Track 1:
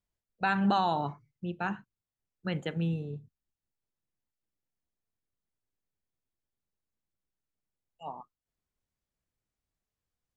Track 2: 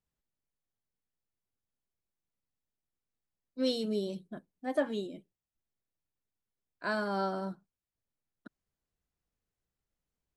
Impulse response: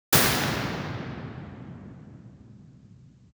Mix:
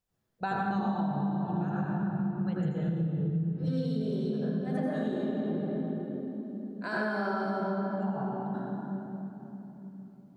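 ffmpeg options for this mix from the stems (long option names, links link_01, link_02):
-filter_complex "[0:a]equalizer=frequency=2400:width_type=o:width=1.2:gain=-12,acontrast=84,volume=-7.5dB,asplit=3[link_01][link_02][link_03];[link_02]volume=-19dB[link_04];[1:a]highpass=190,acompressor=threshold=-35dB:ratio=2.5,volume=0dB,asplit=2[link_05][link_06];[link_06]volume=-15dB[link_07];[link_03]apad=whole_len=456970[link_08];[link_05][link_08]sidechaincompress=threshold=-52dB:ratio=8:attack=16:release=689[link_09];[2:a]atrim=start_sample=2205[link_10];[link_04][link_07]amix=inputs=2:normalize=0[link_11];[link_11][link_10]afir=irnorm=-1:irlink=0[link_12];[link_01][link_09][link_12]amix=inputs=3:normalize=0,acompressor=threshold=-27dB:ratio=12"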